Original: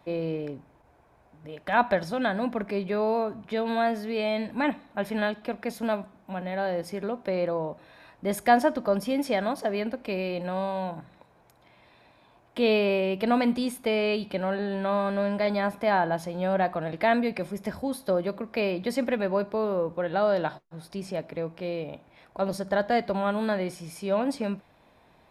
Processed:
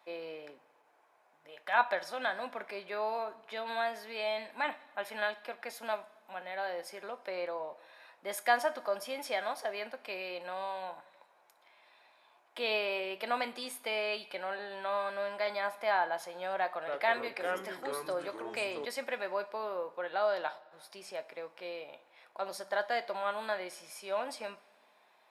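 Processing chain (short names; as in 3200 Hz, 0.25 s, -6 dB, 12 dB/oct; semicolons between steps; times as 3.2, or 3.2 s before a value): HPF 740 Hz 12 dB/oct; two-slope reverb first 0.23 s, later 1.7 s, from -18 dB, DRR 10 dB; 16.59–18.85 echoes that change speed 0.284 s, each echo -4 st, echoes 3, each echo -6 dB; gain -3.5 dB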